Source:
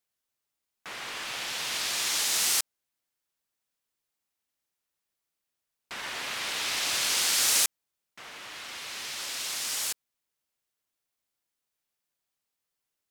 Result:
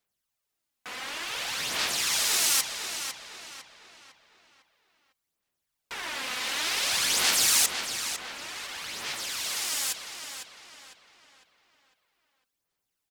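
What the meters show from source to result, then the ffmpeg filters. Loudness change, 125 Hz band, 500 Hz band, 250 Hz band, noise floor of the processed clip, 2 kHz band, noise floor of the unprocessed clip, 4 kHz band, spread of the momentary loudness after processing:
+0.5 dB, +3.5 dB, +3.0 dB, +4.0 dB, −83 dBFS, +2.5 dB, −85 dBFS, +2.0 dB, 19 LU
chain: -filter_complex "[0:a]aphaser=in_gain=1:out_gain=1:delay=4:decay=0.51:speed=0.55:type=sinusoidal,asplit=2[link_01][link_02];[link_02]adelay=503,lowpass=frequency=4500:poles=1,volume=-6dB,asplit=2[link_03][link_04];[link_04]adelay=503,lowpass=frequency=4500:poles=1,volume=0.45,asplit=2[link_05][link_06];[link_06]adelay=503,lowpass=frequency=4500:poles=1,volume=0.45,asplit=2[link_07][link_08];[link_08]adelay=503,lowpass=frequency=4500:poles=1,volume=0.45,asplit=2[link_09][link_10];[link_10]adelay=503,lowpass=frequency=4500:poles=1,volume=0.45[link_11];[link_01][link_03][link_05][link_07][link_09][link_11]amix=inputs=6:normalize=0"

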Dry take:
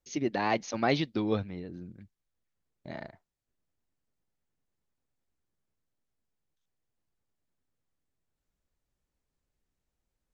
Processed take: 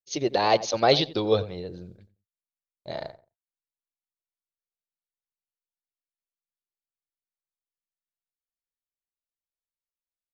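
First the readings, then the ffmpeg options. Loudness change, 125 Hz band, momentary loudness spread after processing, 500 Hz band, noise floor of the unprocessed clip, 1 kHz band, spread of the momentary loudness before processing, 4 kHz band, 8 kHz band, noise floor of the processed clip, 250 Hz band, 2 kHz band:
+7.0 dB, +3.0 dB, 17 LU, +9.0 dB, below −85 dBFS, +7.0 dB, 17 LU, +12.5 dB, can't be measured, below −85 dBFS, 0.0 dB, +2.5 dB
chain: -filter_complex "[0:a]agate=range=-33dB:threshold=-43dB:ratio=3:detection=peak,equalizer=frequency=250:width_type=o:width=1:gain=-11,equalizer=frequency=500:width_type=o:width=1:gain=8,equalizer=frequency=2000:width_type=o:width=1:gain=-7,equalizer=frequency=4000:width_type=o:width=1:gain=10,asplit=2[link_01][link_02];[link_02]adelay=89,lowpass=frequency=1400:poles=1,volume=-15dB,asplit=2[link_03][link_04];[link_04]adelay=89,lowpass=frequency=1400:poles=1,volume=0.22[link_05];[link_01][link_03][link_05]amix=inputs=3:normalize=0,volume=5.5dB"

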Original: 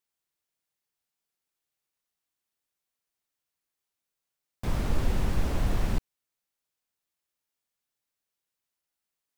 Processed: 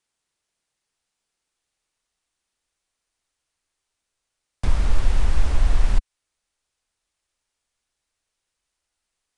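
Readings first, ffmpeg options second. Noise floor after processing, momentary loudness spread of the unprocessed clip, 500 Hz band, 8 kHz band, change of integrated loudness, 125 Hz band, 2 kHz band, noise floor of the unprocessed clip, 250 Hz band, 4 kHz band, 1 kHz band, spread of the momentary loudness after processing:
−82 dBFS, 5 LU, −1.0 dB, +4.0 dB, +6.0 dB, +5.0 dB, +4.0 dB, below −85 dBFS, −3.5 dB, +4.0 dB, +2.5 dB, 5 LU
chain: -filter_complex "[0:a]acrossover=split=320|690[link_01][link_02][link_03];[link_01]acompressor=threshold=-34dB:ratio=4[link_04];[link_02]acompressor=threshold=-54dB:ratio=4[link_05];[link_03]acompressor=threshold=-44dB:ratio=4[link_06];[link_04][link_05][link_06]amix=inputs=3:normalize=0,aresample=22050,aresample=44100,asubboost=boost=5:cutoff=66,volume=8.5dB"

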